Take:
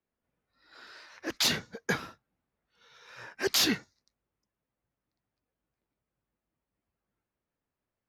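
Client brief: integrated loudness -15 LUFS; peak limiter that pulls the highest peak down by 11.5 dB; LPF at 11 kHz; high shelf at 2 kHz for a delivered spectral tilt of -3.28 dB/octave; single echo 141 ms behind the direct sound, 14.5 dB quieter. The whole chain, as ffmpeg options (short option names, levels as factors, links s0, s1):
-af "lowpass=11000,highshelf=f=2000:g=-8.5,alimiter=level_in=1.58:limit=0.0631:level=0:latency=1,volume=0.631,aecho=1:1:141:0.188,volume=21.1"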